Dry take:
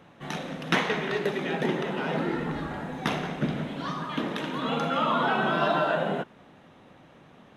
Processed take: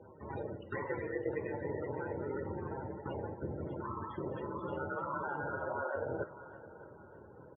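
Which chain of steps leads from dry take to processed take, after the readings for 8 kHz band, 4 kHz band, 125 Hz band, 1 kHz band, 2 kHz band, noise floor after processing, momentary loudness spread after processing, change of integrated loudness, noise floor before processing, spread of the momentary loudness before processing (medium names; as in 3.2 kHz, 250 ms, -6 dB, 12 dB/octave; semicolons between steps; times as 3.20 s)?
under -30 dB, under -30 dB, -9.0 dB, -12.5 dB, -13.5 dB, -55 dBFS, 14 LU, -11.5 dB, -54 dBFS, 10 LU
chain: bass shelf 230 Hz +4.5 dB; ring modulator 70 Hz; reverse; compression 6:1, threshold -36 dBFS, peak gain reduction 16 dB; reverse; loudest bins only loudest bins 32; comb 2.1 ms, depth 65%; flange 0.54 Hz, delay 7.7 ms, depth 1.7 ms, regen -84%; band-pass 110–2600 Hz; on a send: thinning echo 609 ms, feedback 44%, high-pass 730 Hz, level -13 dB; on the sum: trim +6 dB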